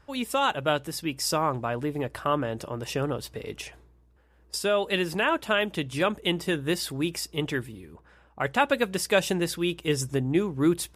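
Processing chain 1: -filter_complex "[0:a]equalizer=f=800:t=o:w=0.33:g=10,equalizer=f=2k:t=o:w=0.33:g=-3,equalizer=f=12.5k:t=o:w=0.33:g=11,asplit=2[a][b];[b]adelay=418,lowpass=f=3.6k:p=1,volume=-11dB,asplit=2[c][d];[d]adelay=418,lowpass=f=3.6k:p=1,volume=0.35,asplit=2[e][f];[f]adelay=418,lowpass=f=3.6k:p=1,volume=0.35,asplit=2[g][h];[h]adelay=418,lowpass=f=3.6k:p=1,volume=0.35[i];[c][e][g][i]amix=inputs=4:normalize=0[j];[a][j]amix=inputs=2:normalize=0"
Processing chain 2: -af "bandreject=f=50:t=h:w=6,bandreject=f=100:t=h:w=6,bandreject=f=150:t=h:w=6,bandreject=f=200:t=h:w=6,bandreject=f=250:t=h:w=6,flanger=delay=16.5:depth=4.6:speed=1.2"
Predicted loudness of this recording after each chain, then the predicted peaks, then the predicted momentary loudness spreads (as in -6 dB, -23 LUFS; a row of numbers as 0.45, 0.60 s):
-25.5, -30.5 LUFS; -5.0, -11.0 dBFS; 11, 9 LU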